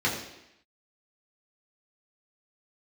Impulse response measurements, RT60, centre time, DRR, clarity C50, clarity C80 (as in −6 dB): 0.85 s, 36 ms, −6.0 dB, 5.5 dB, 7.5 dB